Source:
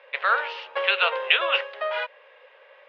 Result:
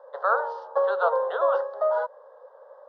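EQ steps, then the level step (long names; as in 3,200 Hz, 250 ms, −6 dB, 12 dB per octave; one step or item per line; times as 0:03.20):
Butterworth band-reject 2,400 Hz, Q 0.53
flat-topped bell 880 Hz +12.5 dB 2.3 octaves
−6.0 dB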